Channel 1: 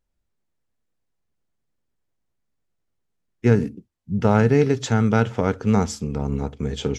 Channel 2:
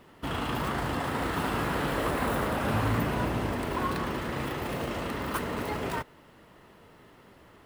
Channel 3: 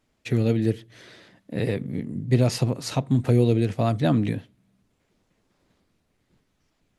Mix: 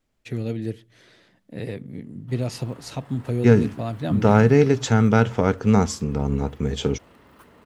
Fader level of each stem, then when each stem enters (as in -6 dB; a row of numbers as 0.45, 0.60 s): +1.5, -19.5, -6.0 dB; 0.00, 2.05, 0.00 s